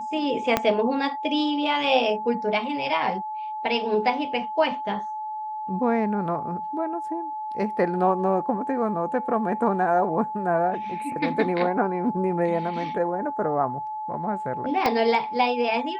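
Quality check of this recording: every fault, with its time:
whine 860 Hz -29 dBFS
0.57 s: pop -6 dBFS
14.86 s: pop -9 dBFS

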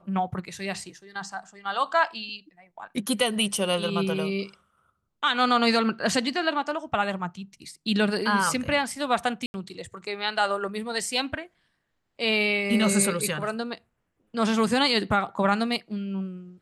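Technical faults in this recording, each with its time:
9.46–9.54 s: dropout 81 ms

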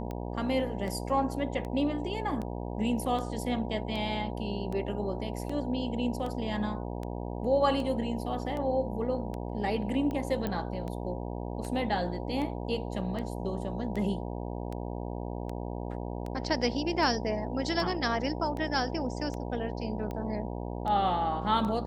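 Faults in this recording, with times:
buzz 60 Hz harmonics 16 -36 dBFS
tick 78 rpm -25 dBFS
10.47 s: pop -19 dBFS

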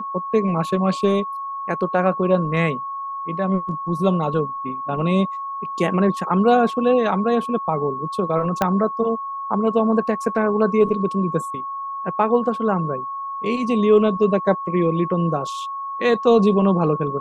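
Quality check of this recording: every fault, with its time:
whine 1.1 kHz -26 dBFS
8.62 s: pop -5 dBFS

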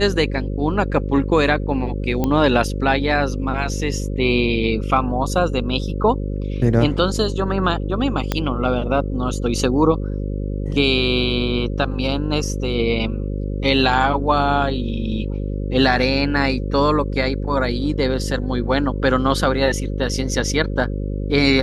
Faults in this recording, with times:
buzz 50 Hz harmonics 11 -24 dBFS
2.24 s: pop -8 dBFS
8.32 s: pop -5 dBFS

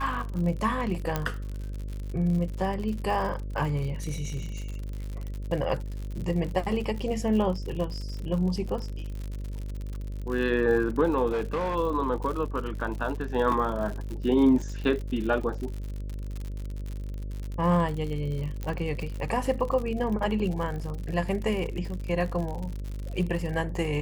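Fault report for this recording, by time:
buzz 50 Hz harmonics 12 -34 dBFS
crackle 77 per s -33 dBFS
1.16 s: pop -12 dBFS
11.32–11.76 s: clipped -24.5 dBFS
13.52 s: dropout 2.7 ms
18.63 s: pop -20 dBFS

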